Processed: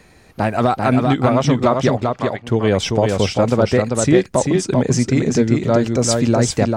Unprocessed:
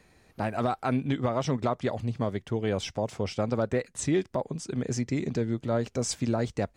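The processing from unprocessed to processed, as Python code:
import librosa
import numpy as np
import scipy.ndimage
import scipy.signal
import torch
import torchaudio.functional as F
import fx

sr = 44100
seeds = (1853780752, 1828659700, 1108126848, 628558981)

p1 = fx.rider(x, sr, range_db=10, speed_s=0.5)
p2 = x + (p1 * librosa.db_to_amplitude(2.5))
p3 = fx.bandpass_q(p2, sr, hz=fx.line((1.96, 650.0), (2.44, 2200.0)), q=1.3, at=(1.96, 2.44), fade=0.02)
p4 = p3 + 10.0 ** (-4.0 / 20.0) * np.pad(p3, (int(392 * sr / 1000.0), 0))[:len(p3)]
y = p4 * librosa.db_to_amplitude(4.5)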